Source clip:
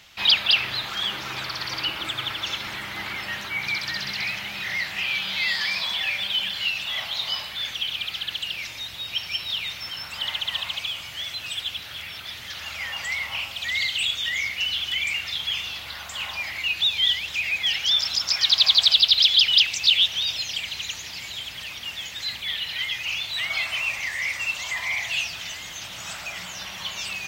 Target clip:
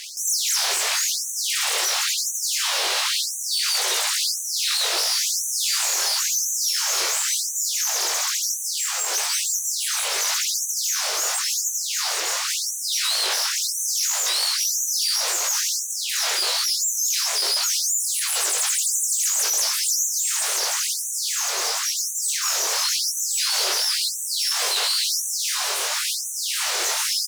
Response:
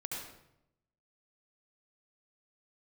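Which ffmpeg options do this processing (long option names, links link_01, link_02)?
-filter_complex "[0:a]asplit=2[link_01][link_02];[link_02]highpass=frequency=720:poles=1,volume=32dB,asoftclip=type=tanh:threshold=-5dB[link_03];[link_01][link_03]amix=inputs=2:normalize=0,lowpass=frequency=3200:poles=1,volume=-6dB,aresample=22050,aresample=44100,aeval=exprs='abs(val(0))':channel_layout=same,flanger=delay=18.5:depth=6.1:speed=0.77,afftfilt=real='re*gte(b*sr/1024,340*pow(5900/340,0.5+0.5*sin(2*PI*0.96*pts/sr)))':imag='im*gte(b*sr/1024,340*pow(5900/340,0.5+0.5*sin(2*PI*0.96*pts/sr)))':win_size=1024:overlap=0.75,volume=2.5dB"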